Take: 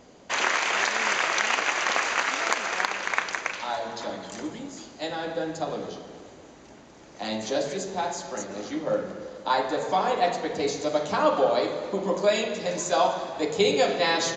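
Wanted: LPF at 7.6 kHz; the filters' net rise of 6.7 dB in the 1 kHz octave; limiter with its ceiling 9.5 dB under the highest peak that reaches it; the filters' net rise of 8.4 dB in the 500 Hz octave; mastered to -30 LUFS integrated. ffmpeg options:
-af "lowpass=7600,equalizer=f=500:t=o:g=8.5,equalizer=f=1000:t=o:g=5.5,volume=0.398,alimiter=limit=0.141:level=0:latency=1"

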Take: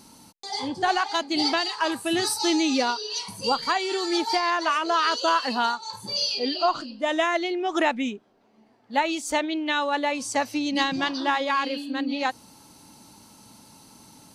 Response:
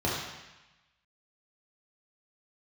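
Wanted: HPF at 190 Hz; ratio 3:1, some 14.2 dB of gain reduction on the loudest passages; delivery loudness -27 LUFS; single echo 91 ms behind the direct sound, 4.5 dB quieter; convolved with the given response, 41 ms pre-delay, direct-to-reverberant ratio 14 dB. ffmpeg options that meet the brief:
-filter_complex "[0:a]highpass=190,acompressor=threshold=0.0126:ratio=3,aecho=1:1:91:0.596,asplit=2[s0][s1];[1:a]atrim=start_sample=2205,adelay=41[s2];[s1][s2]afir=irnorm=-1:irlink=0,volume=0.0562[s3];[s0][s3]amix=inputs=2:normalize=0,volume=2.66"

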